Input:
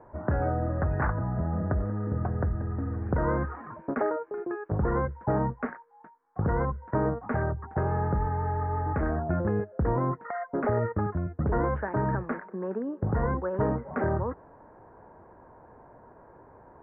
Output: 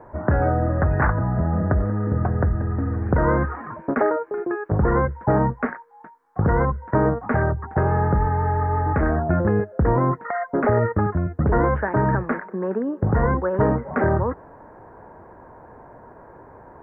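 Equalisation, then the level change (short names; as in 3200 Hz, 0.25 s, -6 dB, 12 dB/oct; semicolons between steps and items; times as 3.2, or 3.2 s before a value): bell 1900 Hz +2.5 dB; +7.5 dB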